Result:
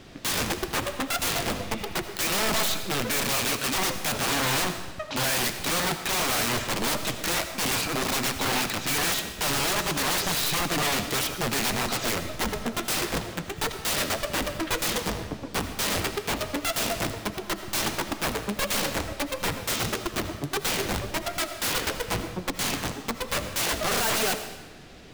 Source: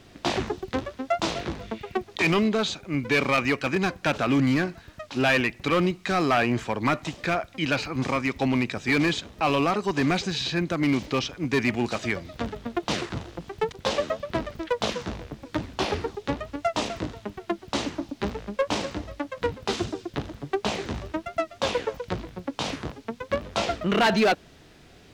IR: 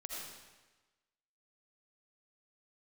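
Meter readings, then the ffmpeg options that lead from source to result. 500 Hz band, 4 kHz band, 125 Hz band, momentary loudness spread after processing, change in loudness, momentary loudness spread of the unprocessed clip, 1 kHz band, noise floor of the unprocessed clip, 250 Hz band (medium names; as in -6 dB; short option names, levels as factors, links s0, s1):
-4.0 dB, +4.5 dB, -3.0 dB, 7 LU, +0.5 dB, 11 LU, -1.0 dB, -52 dBFS, -6.0 dB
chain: -filter_complex "[0:a]aeval=exprs='(mod(17.8*val(0)+1,2)-1)/17.8':c=same,flanger=delay=3.1:depth=8.3:regen=-56:speed=1.6:shape=triangular,asplit=2[s0][s1];[1:a]atrim=start_sample=2205[s2];[s1][s2]afir=irnorm=-1:irlink=0,volume=0.668[s3];[s0][s3]amix=inputs=2:normalize=0,volume=1.88"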